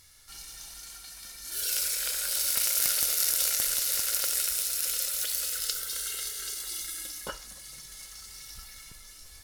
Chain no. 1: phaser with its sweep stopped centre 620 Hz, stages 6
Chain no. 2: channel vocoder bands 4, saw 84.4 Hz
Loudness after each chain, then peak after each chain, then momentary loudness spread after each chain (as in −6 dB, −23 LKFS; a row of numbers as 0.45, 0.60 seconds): −27.5, −33.0 LKFS; −5.5, −9.5 dBFS; 20, 15 LU